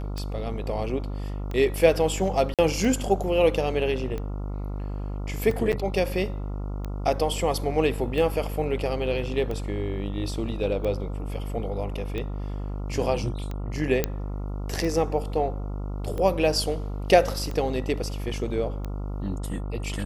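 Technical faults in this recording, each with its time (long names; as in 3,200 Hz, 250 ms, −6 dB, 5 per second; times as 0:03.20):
mains buzz 50 Hz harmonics 28 −31 dBFS
scratch tick 45 rpm −20 dBFS
0:02.54–0:02.59: drop-out 47 ms
0:05.72–0:05.73: drop-out 8.2 ms
0:14.04: click −8 dBFS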